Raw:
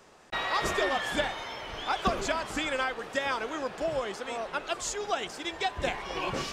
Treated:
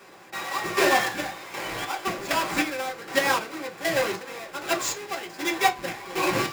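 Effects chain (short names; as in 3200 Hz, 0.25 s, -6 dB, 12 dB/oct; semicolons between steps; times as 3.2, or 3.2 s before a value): half-waves squared off; chopper 1.3 Hz, depth 65%, duty 40%; reverb RT60 0.20 s, pre-delay 3 ms, DRR -1 dB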